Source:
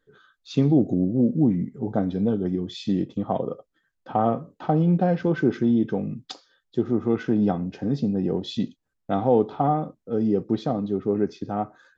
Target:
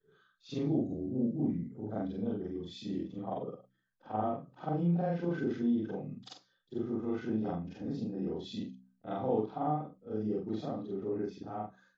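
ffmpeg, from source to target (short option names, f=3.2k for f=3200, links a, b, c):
-af "afftfilt=real='re':imag='-im':win_size=4096:overlap=0.75,bandreject=f=63.47:t=h:w=4,bandreject=f=126.94:t=h:w=4,bandreject=f=190.41:t=h:w=4,bandreject=f=253.88:t=h:w=4,volume=-6.5dB" -ar 24000 -c:a libmp3lame -b:a 40k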